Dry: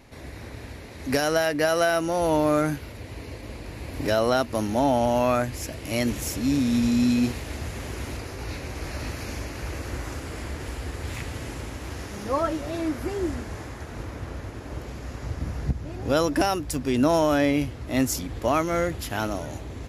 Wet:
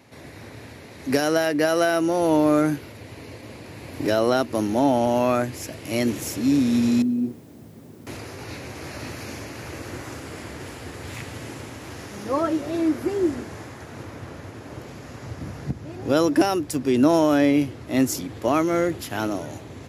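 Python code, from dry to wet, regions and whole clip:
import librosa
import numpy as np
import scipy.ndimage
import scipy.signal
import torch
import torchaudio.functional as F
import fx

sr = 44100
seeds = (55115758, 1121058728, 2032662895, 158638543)

y = fx.chain(x, sr, fx.bandpass_q(hz=190.0, q=1.4),
    fx.low_shelf(hz=200.0, db=-5.5),
    fx.quant_dither(seeds[0], bits=10, dither='triangular'), at=(7.02, 8.07))
y = scipy.signal.sosfilt(scipy.signal.butter(4, 95.0, 'highpass', fs=sr, output='sos'), y)
y = fx.dynamic_eq(y, sr, hz=340.0, q=2.0, threshold_db=-39.0, ratio=4.0, max_db=7)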